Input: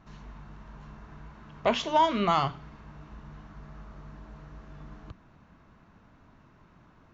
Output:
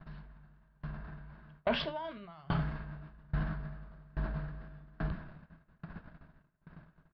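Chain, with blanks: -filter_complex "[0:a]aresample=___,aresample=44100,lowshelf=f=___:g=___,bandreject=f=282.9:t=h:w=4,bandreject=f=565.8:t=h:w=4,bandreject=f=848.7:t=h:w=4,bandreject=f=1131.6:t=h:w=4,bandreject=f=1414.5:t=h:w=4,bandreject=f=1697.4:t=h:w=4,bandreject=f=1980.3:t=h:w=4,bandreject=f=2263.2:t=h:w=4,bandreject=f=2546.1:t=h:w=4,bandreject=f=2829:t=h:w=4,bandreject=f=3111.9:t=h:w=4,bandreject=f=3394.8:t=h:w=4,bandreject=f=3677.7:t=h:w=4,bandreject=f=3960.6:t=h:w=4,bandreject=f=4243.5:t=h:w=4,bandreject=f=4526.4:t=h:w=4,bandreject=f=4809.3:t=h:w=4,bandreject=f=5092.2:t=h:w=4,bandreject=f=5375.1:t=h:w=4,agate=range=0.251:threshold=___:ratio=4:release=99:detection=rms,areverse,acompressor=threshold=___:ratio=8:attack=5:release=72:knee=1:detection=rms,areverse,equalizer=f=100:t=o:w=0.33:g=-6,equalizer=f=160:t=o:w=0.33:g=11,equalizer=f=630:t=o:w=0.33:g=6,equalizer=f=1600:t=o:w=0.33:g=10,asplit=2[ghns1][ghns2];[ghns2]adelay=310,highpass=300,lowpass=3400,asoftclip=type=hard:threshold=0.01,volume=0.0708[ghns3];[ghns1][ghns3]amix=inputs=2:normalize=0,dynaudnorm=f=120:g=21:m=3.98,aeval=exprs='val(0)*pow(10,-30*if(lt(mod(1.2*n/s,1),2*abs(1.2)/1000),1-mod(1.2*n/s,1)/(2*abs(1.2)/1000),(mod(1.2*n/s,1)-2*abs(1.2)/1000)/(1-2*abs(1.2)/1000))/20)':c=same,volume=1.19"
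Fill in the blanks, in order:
11025, 85, 10, 0.00316, 0.00794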